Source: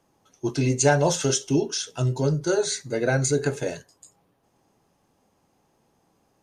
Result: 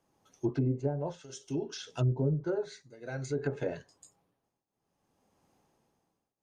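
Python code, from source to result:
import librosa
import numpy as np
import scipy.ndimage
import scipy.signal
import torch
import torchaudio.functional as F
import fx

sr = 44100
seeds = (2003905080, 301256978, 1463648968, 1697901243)

y = fx.tremolo_shape(x, sr, shape='triangle', hz=0.59, depth_pct=95)
y = fx.env_lowpass_down(y, sr, base_hz=430.0, full_db=-21.0)
y = F.gain(torch.from_numpy(y), -3.5).numpy()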